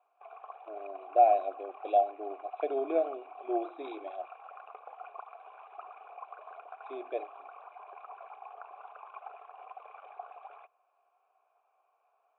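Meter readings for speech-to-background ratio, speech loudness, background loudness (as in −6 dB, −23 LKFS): 18.0 dB, −30.5 LKFS, −48.5 LKFS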